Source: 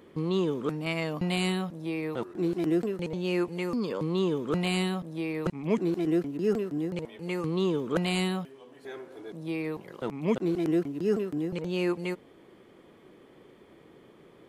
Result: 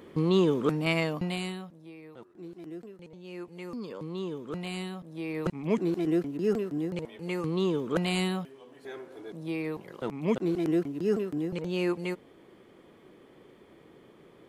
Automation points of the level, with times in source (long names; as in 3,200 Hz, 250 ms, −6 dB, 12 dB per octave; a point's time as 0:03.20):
0:00.97 +4 dB
0:01.51 −8 dB
0:01.95 −15.5 dB
0:03.23 −15.5 dB
0:03.71 −8 dB
0:04.98 −8 dB
0:05.39 −0.5 dB